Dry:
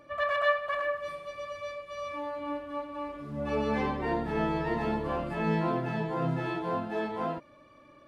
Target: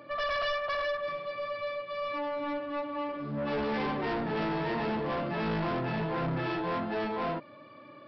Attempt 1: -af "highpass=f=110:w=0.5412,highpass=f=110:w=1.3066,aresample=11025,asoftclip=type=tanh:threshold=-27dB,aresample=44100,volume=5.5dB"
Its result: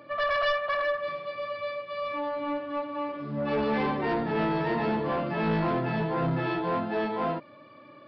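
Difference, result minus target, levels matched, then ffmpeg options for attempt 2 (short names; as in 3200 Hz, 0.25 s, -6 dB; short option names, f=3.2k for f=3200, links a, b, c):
soft clip: distortion -5 dB
-af "highpass=f=110:w=0.5412,highpass=f=110:w=1.3066,aresample=11025,asoftclip=type=tanh:threshold=-34dB,aresample=44100,volume=5.5dB"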